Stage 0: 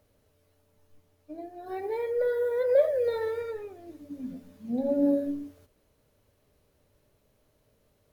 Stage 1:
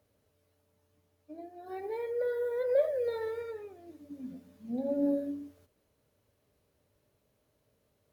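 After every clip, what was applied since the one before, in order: high-pass 59 Hz; trim -5 dB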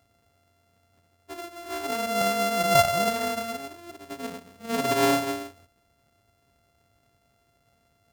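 sorted samples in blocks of 64 samples; trim +7 dB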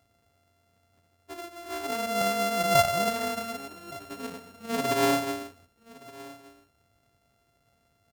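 delay 1169 ms -20.5 dB; trim -2 dB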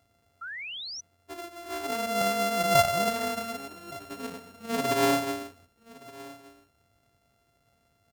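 painted sound rise, 0.41–1.01 s, 1.3–6.1 kHz -38 dBFS

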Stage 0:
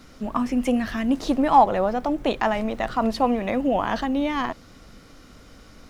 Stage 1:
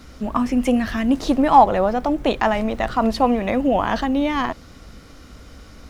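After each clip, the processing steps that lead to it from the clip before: peaking EQ 64 Hz +9.5 dB 0.66 oct; trim +3.5 dB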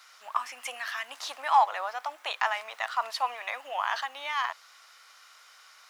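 high-pass 950 Hz 24 dB/octave; trim -3.5 dB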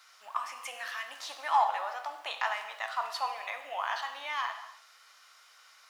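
gated-style reverb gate 330 ms falling, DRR 5.5 dB; trim -4.5 dB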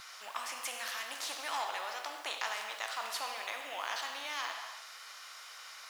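spectrum-flattening compressor 2:1; trim -4.5 dB

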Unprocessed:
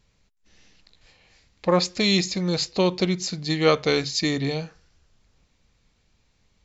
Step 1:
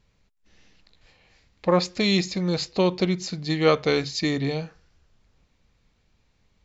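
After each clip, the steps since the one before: treble shelf 5.1 kHz -8.5 dB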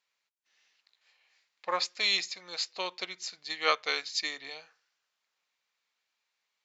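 high-pass 1.1 kHz 12 dB/octave; upward expansion 1.5:1, over -40 dBFS; trim +1 dB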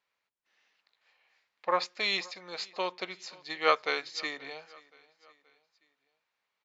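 low-pass 1.4 kHz 6 dB/octave; feedback delay 526 ms, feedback 48%, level -23.5 dB; trim +5 dB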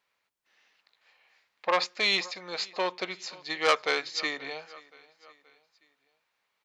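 transformer saturation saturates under 3.4 kHz; trim +5 dB

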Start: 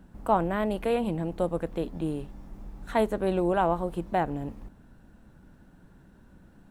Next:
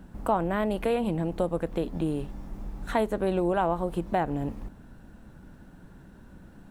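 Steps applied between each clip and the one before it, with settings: compression 2:1, threshold -31 dBFS, peak gain reduction 7.5 dB; trim +5 dB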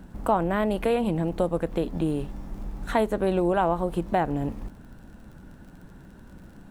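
crackle 36 per s -47 dBFS; trim +2.5 dB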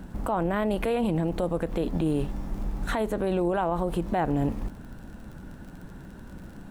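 peak limiter -21.5 dBFS, peak gain reduction 11.5 dB; trim +4 dB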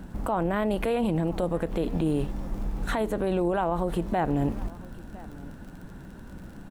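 delay 1008 ms -21 dB

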